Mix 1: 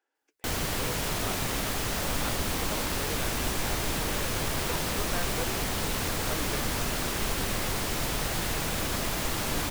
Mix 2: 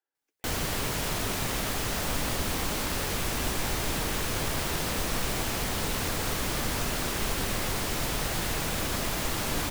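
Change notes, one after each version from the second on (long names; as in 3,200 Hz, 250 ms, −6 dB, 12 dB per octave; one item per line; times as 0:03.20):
speech −11.5 dB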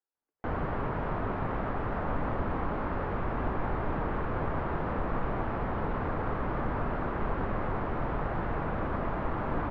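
background +6.0 dB
master: add transistor ladder low-pass 1,600 Hz, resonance 25%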